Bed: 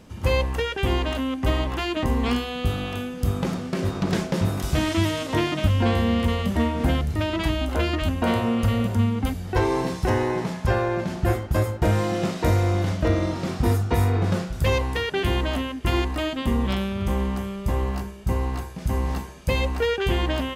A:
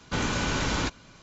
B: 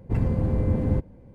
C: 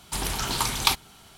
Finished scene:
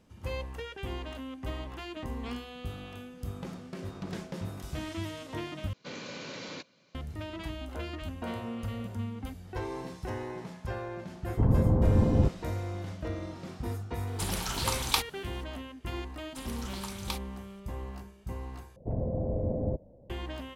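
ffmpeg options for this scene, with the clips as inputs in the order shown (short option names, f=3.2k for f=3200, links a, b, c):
-filter_complex "[2:a]asplit=2[a][b];[3:a]asplit=2[c][d];[0:a]volume=-14.5dB[e];[1:a]highpass=f=140:w=0.5412,highpass=f=140:w=1.3066,equalizer=f=530:t=q:w=4:g=9,equalizer=f=850:t=q:w=4:g=-5,equalizer=f=1.4k:t=q:w=4:g=-4,equalizer=f=2.3k:t=q:w=4:g=4,equalizer=f=4.3k:t=q:w=4:g=6,lowpass=f=6.7k:w=0.5412,lowpass=f=6.7k:w=1.3066[f];[a]highshelf=f=1.7k:t=q:w=1.5:g=-13.5[g];[b]lowpass=f=630:t=q:w=5.7[h];[e]asplit=3[i][j][k];[i]atrim=end=5.734[l];[f]atrim=end=1.22,asetpts=PTS-STARTPTS,volume=-14dB[m];[j]atrim=start=6.946:end=18.764[n];[h]atrim=end=1.34,asetpts=PTS-STARTPTS,volume=-9.5dB[o];[k]atrim=start=20.096[p];[g]atrim=end=1.34,asetpts=PTS-STARTPTS,volume=-0.5dB,afade=t=in:d=0.004:c=hsin,afade=t=out:st=1.336:d=0.004:c=hsin,adelay=11280[q];[c]atrim=end=1.37,asetpts=PTS-STARTPTS,volume=-5.5dB,afade=t=in:d=0.004:c=hsin,afade=t=out:st=1.366:d=0.004:c=hsin,adelay=14070[r];[d]atrim=end=1.37,asetpts=PTS-STARTPTS,volume=-16dB,afade=t=in:d=0.004:c=hsin,afade=t=out:st=1.366:d=0.004:c=hsin,adelay=16230[s];[l][m]acrossfade=d=0.004:c1=hsin:c2=hsin[t];[t][n]acrossfade=d=0.004:c1=hsin:c2=hsin[u];[u][o]acrossfade=d=0.004:c1=hsin:c2=hsin[v];[v][p]acrossfade=d=0.004:c1=hsin:c2=hsin[w];[w][q][r][s]amix=inputs=4:normalize=0"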